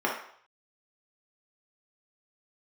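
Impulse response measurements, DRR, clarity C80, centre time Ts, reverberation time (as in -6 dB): -3.0 dB, 8.5 dB, 36 ms, 0.60 s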